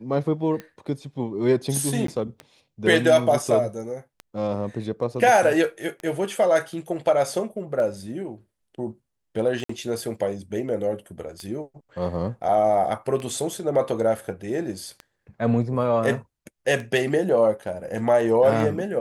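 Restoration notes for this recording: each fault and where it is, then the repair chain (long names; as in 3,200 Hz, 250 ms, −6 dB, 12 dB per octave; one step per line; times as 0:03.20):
scratch tick 33 1/3 rpm −21 dBFS
0:02.07–0:02.08: drop-out 13 ms
0:09.64–0:09.69: drop-out 54 ms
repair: click removal
repair the gap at 0:02.07, 13 ms
repair the gap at 0:09.64, 54 ms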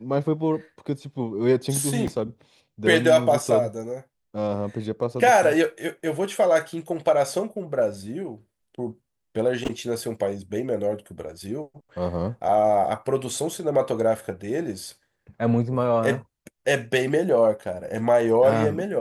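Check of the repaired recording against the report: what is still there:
none of them is left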